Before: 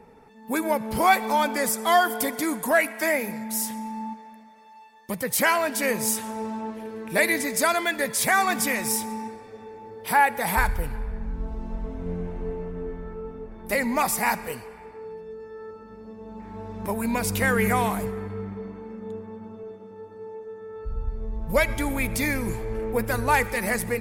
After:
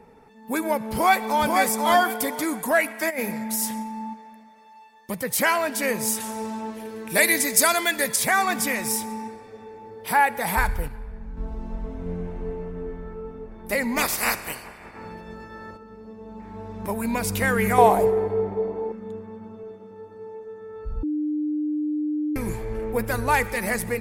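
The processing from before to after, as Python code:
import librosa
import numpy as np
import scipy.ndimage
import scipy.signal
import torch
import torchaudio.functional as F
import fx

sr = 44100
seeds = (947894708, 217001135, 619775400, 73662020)

y = fx.echo_throw(x, sr, start_s=0.88, length_s=0.66, ms=490, feedback_pct=25, wet_db=-3.5)
y = fx.over_compress(y, sr, threshold_db=-27.0, ratio=-0.5, at=(3.09, 3.82), fade=0.02)
y = fx.high_shelf(y, sr, hz=3600.0, db=10.0, at=(6.2, 8.16))
y = fx.spec_clip(y, sr, under_db=20, at=(13.96, 15.76), fade=0.02)
y = fx.band_shelf(y, sr, hz=550.0, db=13.0, octaves=1.7, at=(17.78, 18.92))
y = fx.edit(y, sr, fx.clip_gain(start_s=10.88, length_s=0.49, db=-5.5),
    fx.bleep(start_s=21.03, length_s=1.33, hz=301.0, db=-22.5), tone=tone)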